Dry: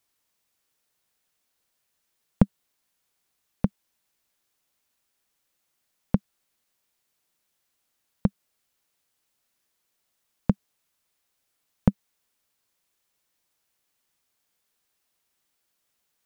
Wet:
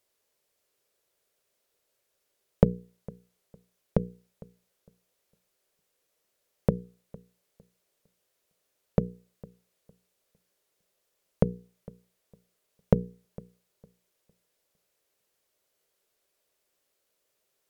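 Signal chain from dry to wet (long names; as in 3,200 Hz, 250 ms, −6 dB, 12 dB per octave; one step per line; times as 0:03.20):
flat-topped bell 520 Hz +10 dB 1 octave
wrong playback speed 48 kHz file played as 44.1 kHz
mains-hum notches 60/120/180/240/300/360/420/480 Hz
on a send: feedback echo with a low-pass in the loop 456 ms, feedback 23%, level −22 dB
on the sum: level −1.5 dB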